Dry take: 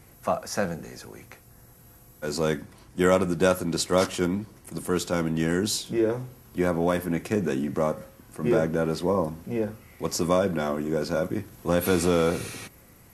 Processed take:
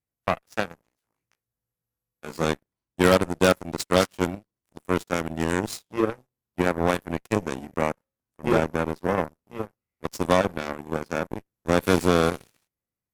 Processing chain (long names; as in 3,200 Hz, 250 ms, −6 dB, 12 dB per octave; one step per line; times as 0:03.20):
harmonic generator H 5 −9 dB, 7 −8 dB, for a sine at −6.5 dBFS
0:01.00–0:02.44: double-tracking delay 18 ms −3 dB